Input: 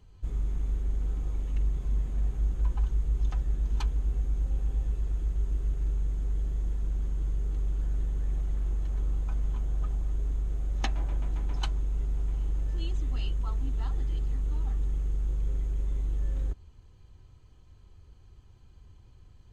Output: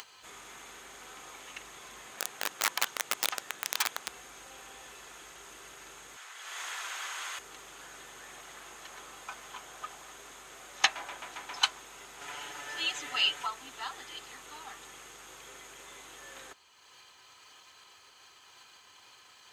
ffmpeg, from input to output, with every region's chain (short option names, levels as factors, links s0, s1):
-filter_complex "[0:a]asettb=1/sr,asplit=3[s0][s1][s2];[s0]atrim=end=2.124[s3];[s1]atrim=start=2.12:end=4.08,asetpts=PTS-STARTPTS,afade=t=in:d=0.004:c=qsin,afade=t=out:st=1.956:d=0.004:c=qsin,highpass=92,aeval=exprs='(mod(31.6*val(0)+1,2)-1)/31.6':c=same[s4];[s2]atrim=start=4.076[s5];[s3][s4]acrossfade=d=0.004:c1=hsin:c2=qsin[s6];[s6][s5]acrossfade=d=0.004:c1=qsin:c2=hsin,asettb=1/sr,asplit=3[s7][s8][s9];[s7]atrim=end=6.164[s10];[s8]atrim=start=6.16:end=7.39,asetpts=PTS-STARTPTS,afade=t=in:d=0.004:c=qsin,afade=t=out:st=1.226:d=0.004:c=qsin,highpass=1100,highshelf=f=5300:g=-8.5,acontrast=31[s11];[s9]atrim=start=7.386[s12];[s10][s11]acrossfade=d=0.004:c1=hsin:c2=qsin[s13];[s13][s12]acrossfade=d=0.004:c1=qsin:c2=hsin,asettb=1/sr,asplit=3[s14][s15][s16];[s14]atrim=end=12.214[s17];[s15]atrim=start=12.21:end=13.47,asetpts=PTS-STARTPTS,afade=t=in:d=0.004:c=qsin,afade=t=out:st=1.256:d=0.004:c=qsin,asuperstop=centerf=1100:order=4:qfactor=6,equalizer=f=1300:t=o:w=3:g=6,aecho=1:1:6.9:0.86,atrim=end_sample=55566[s18];[s16]atrim=start=13.466[s19];[s17][s18]acrossfade=d=0.004:c1=hsin:c2=qsin[s20];[s20][s19]acrossfade=d=0.004:c1=qsin:c2=hsin,acompressor=mode=upward:threshold=0.0112:ratio=2.5,highpass=1200,volume=4.47"